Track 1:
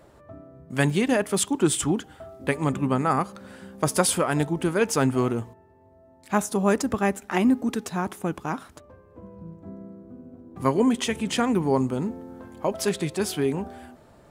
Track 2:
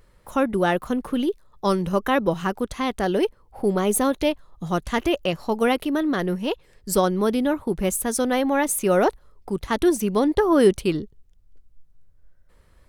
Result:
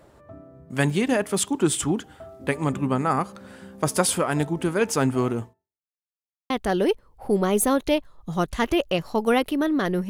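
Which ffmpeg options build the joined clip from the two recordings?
-filter_complex "[0:a]apad=whole_dur=10.09,atrim=end=10.09,asplit=2[a][b];[a]atrim=end=6.05,asetpts=PTS-STARTPTS,afade=t=out:st=5.44:d=0.61:c=exp[c];[b]atrim=start=6.05:end=6.5,asetpts=PTS-STARTPTS,volume=0[d];[1:a]atrim=start=2.84:end=6.43,asetpts=PTS-STARTPTS,afade=t=in:d=0.004:c=hsin[e];[c][d][e]concat=n=3:v=0:a=1"

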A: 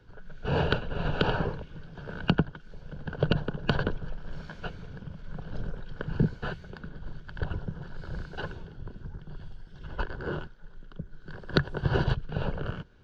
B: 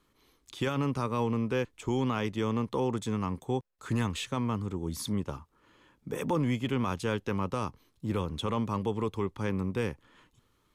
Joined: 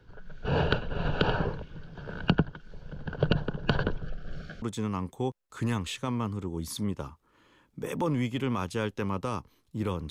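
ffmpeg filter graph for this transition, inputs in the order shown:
-filter_complex "[0:a]asettb=1/sr,asplit=3[a][b][c];[a]atrim=end=4.024[d];[b]atrim=start=4.02:end=4.62,asetpts=PTS-STARTPTS,afade=t=in:d=0.004:c=qsin,afade=t=out:st=0.596:d=0.004:c=qsin,asuperstop=centerf=940:order=20:qfactor=2.9[e];[c]atrim=start=4.616[f];[d][e]acrossfade=d=0.004:c1=hsin:c2=qsin[g];[g][f]acrossfade=d=0.004:c1=qsin:c2=hsin,apad=whole_dur=10.1,atrim=end=10.1,atrim=end=4.622[h];[1:a]atrim=start=2.908:end=8.39[i];[h][i]acrossfade=d=0.004:c1=hsin:c2=hsin"

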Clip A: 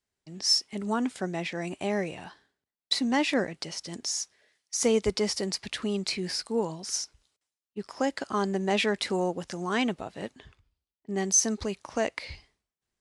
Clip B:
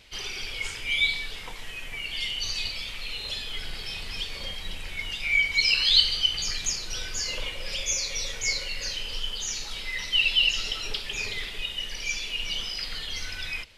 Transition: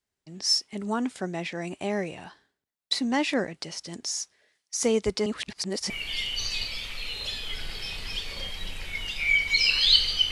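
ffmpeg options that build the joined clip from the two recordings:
-filter_complex "[0:a]apad=whole_dur=10.31,atrim=end=10.31,asplit=2[a][b];[a]atrim=end=5.262[c];[b]atrim=start=5.258:end=5.902,asetpts=PTS-STARTPTS,areverse[d];[1:a]atrim=start=1.938:end=6.35[e];[c][d]acrossfade=d=0.004:c1=hsin:c2=hsin[f];[f][e]acrossfade=d=0.004:c1=hsin:c2=hsin"

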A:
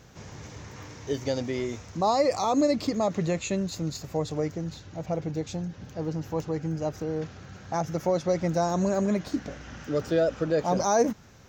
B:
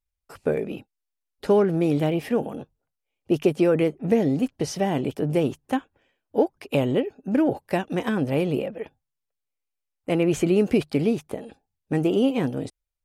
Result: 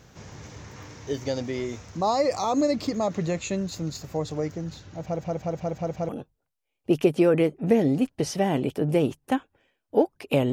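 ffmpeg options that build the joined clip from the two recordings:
-filter_complex "[0:a]apad=whole_dur=10.52,atrim=end=10.52,asplit=6[a][b][c][d][e][f];[a]atrim=end=5.192[g];[b]atrim=start=5.008:end=5.192[h];[c]atrim=start=5.008:end=5.192[i];[d]atrim=start=5.008:end=5.192[j];[e]atrim=start=5.008:end=5.192[k];[f]atrim=start=5.008:end=5.192[l];[1:a]atrim=start=2.498:end=6.93[m];[g][h]acrossfade=d=0.004:c1=hsin:c2=hsin[n];[n][i]acrossfade=d=0.004:c1=hsin:c2=hsin[o];[o][j]acrossfade=d=0.004:c1=hsin:c2=hsin[p];[p][k]acrossfade=d=0.004:c1=hsin:c2=hsin[q];[q][l]acrossfade=d=0.004:c1=hsin:c2=hsin[r];[r][m]acrossfade=d=0.004:c1=hsin:c2=hsin"

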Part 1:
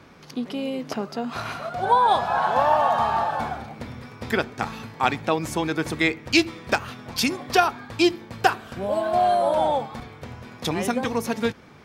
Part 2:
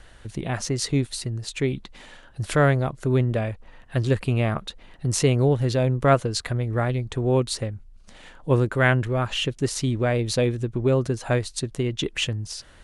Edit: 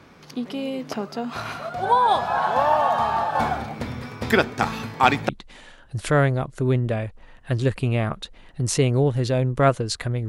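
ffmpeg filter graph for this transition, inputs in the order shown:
-filter_complex "[0:a]asettb=1/sr,asplit=3[a][b][c];[a]atrim=end=3.354[d];[b]atrim=start=3.35:end=5.29,asetpts=PTS-STARTPTS,afade=t=in:d=0.004:c=qsin,afade=t=out:st=1.936:d=0.004:c=qsin,acontrast=39[e];[c]atrim=start=5.286[f];[d][e]acrossfade=d=0.004:c1=hsin:c2=qsin[g];[g][f]acrossfade=d=0.004:c1=qsin:c2=hsin,apad=whole_dur=10.28,atrim=end=10.28,atrim=end=5.292[h];[1:a]atrim=start=1.738:end=6.73[i];[h][i]acrossfade=d=0.004:c1=hsin:c2=hsin"

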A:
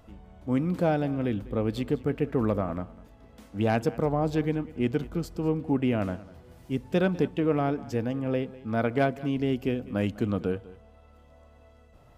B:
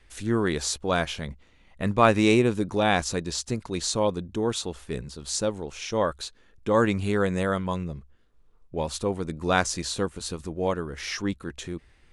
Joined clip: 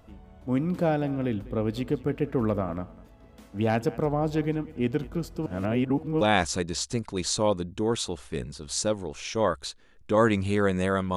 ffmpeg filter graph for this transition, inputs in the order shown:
-filter_complex "[0:a]apad=whole_dur=11.16,atrim=end=11.16,asplit=2[a][b];[a]atrim=end=5.462[c];[b]atrim=start=5.458:end=6.212,asetpts=PTS-STARTPTS,areverse[d];[1:a]atrim=start=2.778:end=7.73[e];[c][d]acrossfade=d=0.004:c1=hsin:c2=hsin[f];[f][e]acrossfade=d=0.004:c1=hsin:c2=hsin"

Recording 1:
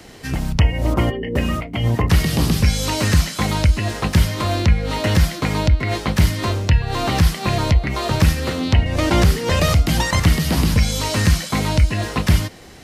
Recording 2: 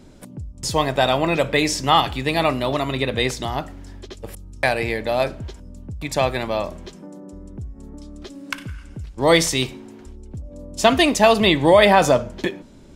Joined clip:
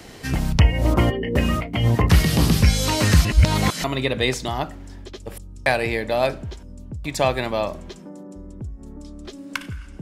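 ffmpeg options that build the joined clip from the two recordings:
-filter_complex "[0:a]apad=whole_dur=10.01,atrim=end=10.01,asplit=2[a][b];[a]atrim=end=3.252[c];[b]atrim=start=3.248:end=3.842,asetpts=PTS-STARTPTS,areverse[d];[1:a]atrim=start=2.808:end=8.98[e];[c][d]acrossfade=d=0.004:c1=hsin:c2=hsin[f];[f][e]acrossfade=d=0.004:c1=hsin:c2=hsin"

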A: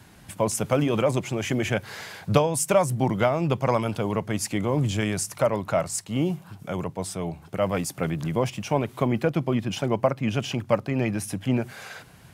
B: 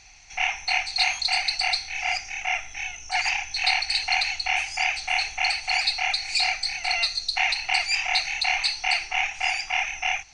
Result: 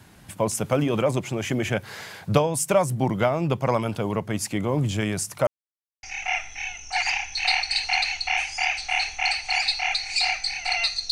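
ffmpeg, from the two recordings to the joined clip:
-filter_complex "[0:a]apad=whole_dur=11.11,atrim=end=11.11,asplit=2[a][b];[a]atrim=end=5.47,asetpts=PTS-STARTPTS,afade=t=out:st=5.466:d=0.004:c=hsin[c];[b]atrim=start=5.47:end=6.03,asetpts=PTS-STARTPTS,volume=0[d];[1:a]atrim=start=2.22:end=7.3,asetpts=PTS-STARTPTS,afade=t=in:d=0.004:c=hsin[e];[c][d][e]concat=n=3:v=0:a=1"

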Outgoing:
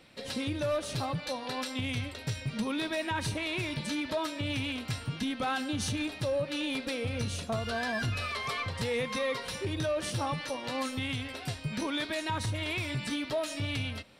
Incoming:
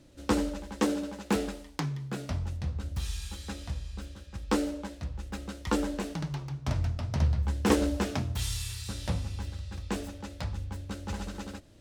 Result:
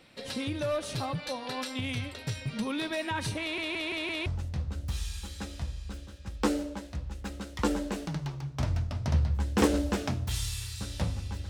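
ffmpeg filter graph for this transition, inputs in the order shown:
-filter_complex "[0:a]apad=whole_dur=11.49,atrim=end=11.49,asplit=5[a][b][c][d][e];[a]atrim=end=3.582[f];[b]atrim=start=3.408:end=3.582[g];[c]atrim=start=3.408:end=3.582[h];[d]atrim=start=3.408:end=3.582[i];[e]atrim=start=3.408:end=3.582[j];[1:a]atrim=start=2.338:end=9.57[k];[f][g]acrossfade=d=0.004:c1=hsin:c2=hsin[l];[l][h]acrossfade=d=0.004:c1=hsin:c2=hsin[m];[m][i]acrossfade=d=0.004:c1=hsin:c2=hsin[n];[n][j]acrossfade=d=0.004:c1=hsin:c2=hsin[o];[o][k]acrossfade=d=0.004:c1=hsin:c2=hsin"

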